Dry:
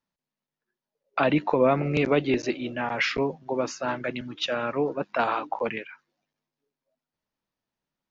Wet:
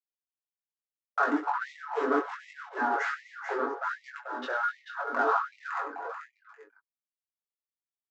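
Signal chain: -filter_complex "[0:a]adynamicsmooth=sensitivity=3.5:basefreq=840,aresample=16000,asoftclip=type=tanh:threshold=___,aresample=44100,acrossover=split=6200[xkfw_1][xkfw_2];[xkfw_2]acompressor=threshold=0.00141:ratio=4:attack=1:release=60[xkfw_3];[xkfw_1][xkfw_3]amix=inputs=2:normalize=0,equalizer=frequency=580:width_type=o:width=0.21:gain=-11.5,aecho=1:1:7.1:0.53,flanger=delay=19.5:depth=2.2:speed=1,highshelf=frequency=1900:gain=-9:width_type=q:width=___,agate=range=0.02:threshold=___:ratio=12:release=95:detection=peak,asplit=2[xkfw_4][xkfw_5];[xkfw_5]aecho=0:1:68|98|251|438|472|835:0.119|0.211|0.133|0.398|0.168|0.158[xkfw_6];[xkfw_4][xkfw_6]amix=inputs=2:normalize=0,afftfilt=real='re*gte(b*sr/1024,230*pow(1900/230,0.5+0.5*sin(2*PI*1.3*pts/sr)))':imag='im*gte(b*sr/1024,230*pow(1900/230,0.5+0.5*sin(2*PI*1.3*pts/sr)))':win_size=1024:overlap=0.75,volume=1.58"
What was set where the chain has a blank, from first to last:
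0.0562, 3, 0.00224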